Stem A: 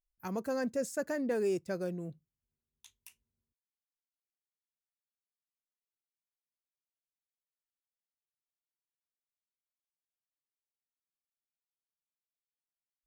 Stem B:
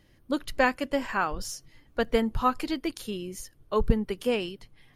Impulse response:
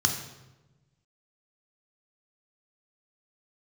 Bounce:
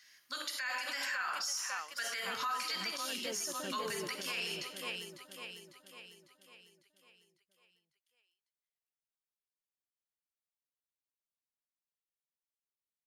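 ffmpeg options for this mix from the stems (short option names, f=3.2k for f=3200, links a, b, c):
-filter_complex "[0:a]adelay=1950,volume=-8.5dB,asplit=2[a][b];[b]volume=-3dB[c];[1:a]highpass=1.4k,highshelf=f=4.3k:g=6.5,volume=-0.5dB,asplit=4[d][e][f][g];[e]volume=-5.5dB[h];[f]volume=-6dB[i];[g]apad=whole_len=661984[j];[a][j]sidechaincompress=threshold=-49dB:ratio=8:attack=16:release=128[k];[2:a]atrim=start_sample=2205[l];[h][l]afir=irnorm=-1:irlink=0[m];[c][i]amix=inputs=2:normalize=0,aecho=0:1:550|1100|1650|2200|2750|3300|3850:1|0.49|0.24|0.118|0.0576|0.0282|0.0138[n];[k][d][m][n]amix=inputs=4:normalize=0,alimiter=level_in=4dB:limit=-24dB:level=0:latency=1:release=65,volume=-4dB"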